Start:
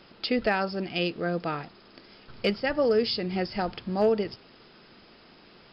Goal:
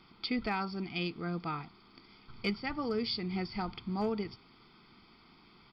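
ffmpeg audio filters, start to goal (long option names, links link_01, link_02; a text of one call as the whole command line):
ffmpeg -i in.wav -af "aecho=1:1:0.9:0.79,volume=-8dB" out.wav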